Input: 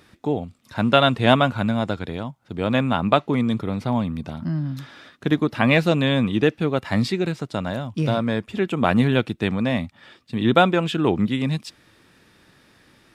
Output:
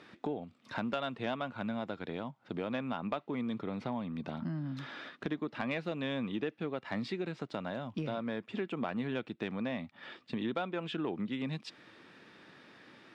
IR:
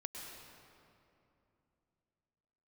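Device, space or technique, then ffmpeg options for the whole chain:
AM radio: -af "highpass=190,lowpass=3.5k,highshelf=f=8.1k:g=5.5,acompressor=threshold=-35dB:ratio=4,asoftclip=type=tanh:threshold=-20.5dB"

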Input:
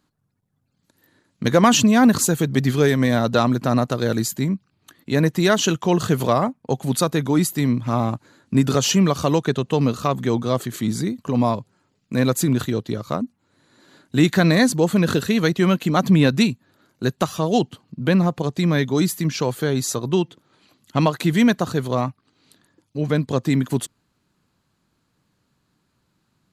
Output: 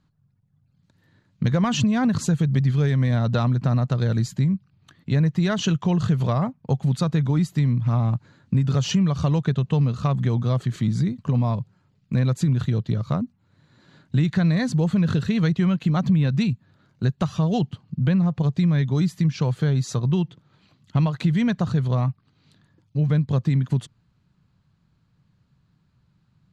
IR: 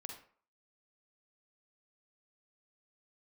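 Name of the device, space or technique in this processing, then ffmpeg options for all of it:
jukebox: -af "lowpass=5.1k,lowshelf=f=210:t=q:w=1.5:g=10,acompressor=threshold=-15dB:ratio=4,volume=-3dB"

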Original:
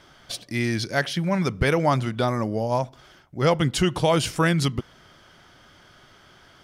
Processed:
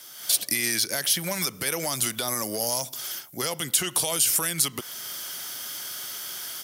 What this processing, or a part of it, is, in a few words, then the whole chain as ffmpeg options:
FM broadcast chain: -filter_complex "[0:a]highpass=78,highpass=f=290:p=1,dynaudnorm=f=150:g=3:m=10.5dB,acrossover=split=410|2700[a][b][c];[a]acompressor=threshold=-28dB:ratio=4[d];[b]acompressor=threshold=-24dB:ratio=4[e];[c]acompressor=threshold=-35dB:ratio=4[f];[d][e][f]amix=inputs=3:normalize=0,aemphasis=mode=production:type=75fm,alimiter=limit=-16.5dB:level=0:latency=1:release=84,asoftclip=type=hard:threshold=-19dB,lowpass=f=15k:w=0.5412,lowpass=f=15k:w=1.3066,aemphasis=mode=production:type=75fm,volume=-3.5dB"

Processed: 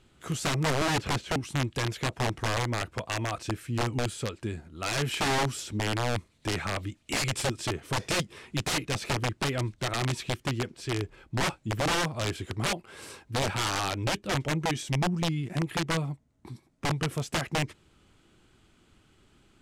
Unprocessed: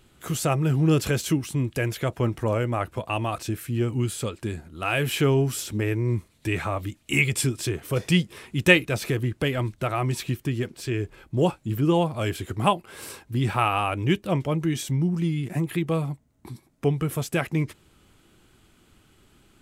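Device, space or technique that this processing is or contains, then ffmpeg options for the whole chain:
overflowing digital effects unit: -filter_complex "[0:a]asettb=1/sr,asplit=3[a][b][c];[a]atrim=end=0.604[d];[b]atrim=start=0.6:end=1.34,asetpts=PTS-STARTPTS,afade=t=in:d=0.004:c=qsin,afade=t=out:st=0.736:d=0.004:c=qsin,acrossover=split=3400[e][f];[f]acompressor=threshold=-47dB:ratio=4:attack=1:release=60[g];[e][g]amix=inputs=2:normalize=0[h];[c]atrim=start=1.336[i];[d][h]acrossfade=d=0.004:c1=hsin:c2=qsin[j];[j][i]acrossfade=d=0.004:c1=qsin:c2=hsin,aeval=exprs='(mod(7.94*val(0)+1,2)-1)/7.94':c=same,lowpass=8.1k,volume=-3.5dB"

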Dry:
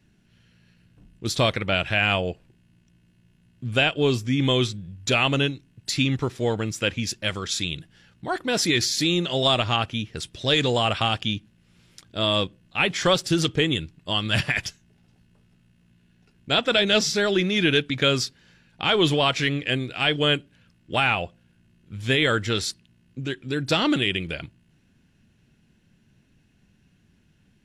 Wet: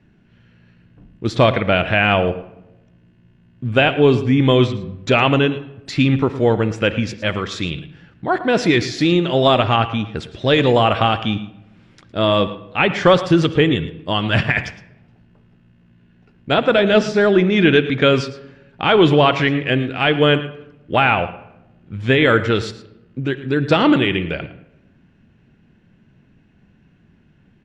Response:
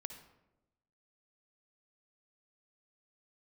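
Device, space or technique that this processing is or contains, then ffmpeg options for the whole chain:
filtered reverb send: -filter_complex "[0:a]aemphasis=mode=reproduction:type=75fm,asplit=2[a][b];[b]highpass=f=190:p=1,lowpass=3.1k[c];[1:a]atrim=start_sample=2205[d];[c][d]afir=irnorm=-1:irlink=0,volume=1dB[e];[a][e]amix=inputs=2:normalize=0,lowpass=8.6k,asettb=1/sr,asplit=3[f][g][h];[f]atrim=end=16.544[i];[g]atrim=start=16.54:end=17.52,asetpts=PTS-STARTPTS,afade=t=in:d=0.004:c=qsin,afade=t=out:st=0.976:d=0.004:c=qsin,equalizer=f=3.3k:w=0.67:g=-4[j];[h]atrim=start=17.516[k];[i][j]acrossfade=d=0.004:c1=hsin:c2=qsin[l];[l][k]acrossfade=d=0.004:c1=qsin:c2=hsin,aecho=1:1:111:0.158,volume=4dB"

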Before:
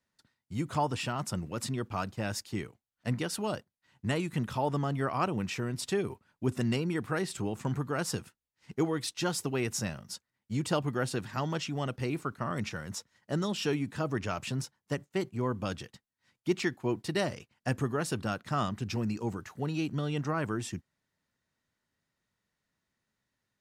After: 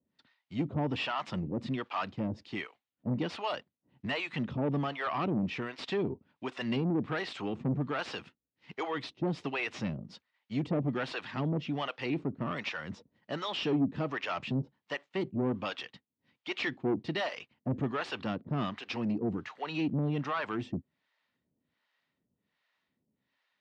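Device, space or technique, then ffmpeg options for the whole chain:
guitar amplifier with harmonic tremolo: -filter_complex "[0:a]aemphasis=mode=production:type=75kf,acrossover=split=570[a][b];[a]aeval=exprs='val(0)*(1-1/2+1/2*cos(2*PI*1.3*n/s))':c=same[c];[b]aeval=exprs='val(0)*(1-1/2-1/2*cos(2*PI*1.3*n/s))':c=same[d];[c][d]amix=inputs=2:normalize=0,asoftclip=type=tanh:threshold=-32.5dB,highpass=94,equalizer=f=110:t=q:w=4:g=-5,equalizer=f=270:t=q:w=4:g=5,equalizer=f=1.5k:t=q:w=4:g=-4,lowpass=f=3.4k:w=0.5412,lowpass=f=3.4k:w=1.3066,volume=7dB"

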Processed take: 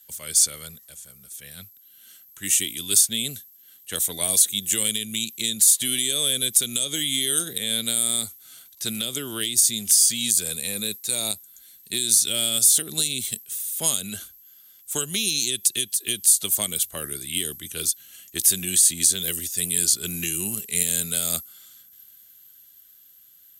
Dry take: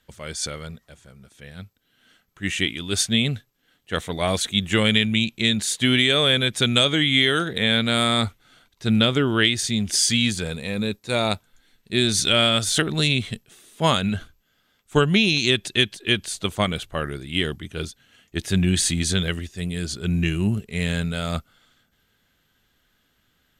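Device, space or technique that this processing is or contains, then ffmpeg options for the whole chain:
FM broadcast chain: -filter_complex "[0:a]highpass=42,dynaudnorm=f=400:g=11:m=7dB,acrossover=split=220|580|4300[a][b][c][d];[a]acompressor=threshold=-35dB:ratio=4[e];[b]acompressor=threshold=-25dB:ratio=4[f];[c]acompressor=threshold=-33dB:ratio=4[g];[d]acompressor=threshold=-28dB:ratio=4[h];[e][f][g][h]amix=inputs=4:normalize=0,aemphasis=mode=production:type=75fm,alimiter=limit=-10dB:level=0:latency=1:release=182,asoftclip=type=hard:threshold=-12dB,lowpass=f=15k:w=0.5412,lowpass=f=15k:w=1.3066,aemphasis=mode=production:type=75fm,volume=-7dB"

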